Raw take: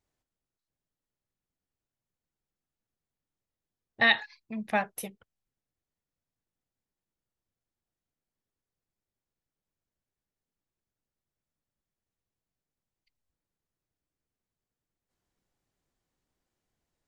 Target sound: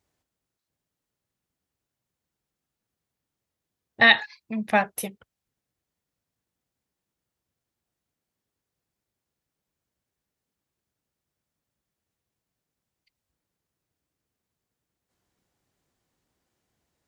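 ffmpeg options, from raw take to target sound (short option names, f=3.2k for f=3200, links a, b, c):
-af "highpass=53,volume=6.5dB"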